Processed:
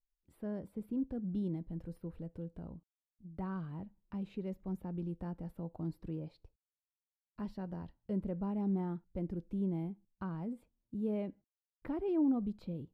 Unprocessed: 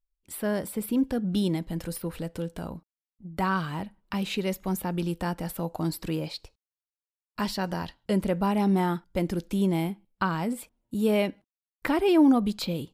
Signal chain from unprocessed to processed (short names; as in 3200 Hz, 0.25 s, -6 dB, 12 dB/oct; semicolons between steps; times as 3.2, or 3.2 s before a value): EQ curve 110 Hz 0 dB, 400 Hz -5 dB, 7400 Hz -28 dB; gain -7.5 dB